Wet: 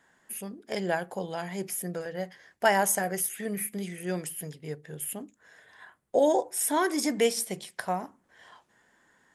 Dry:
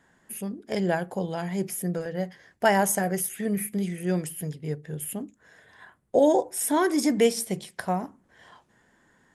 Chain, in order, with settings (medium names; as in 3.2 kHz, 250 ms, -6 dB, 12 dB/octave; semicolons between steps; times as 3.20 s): bass shelf 340 Hz -10 dB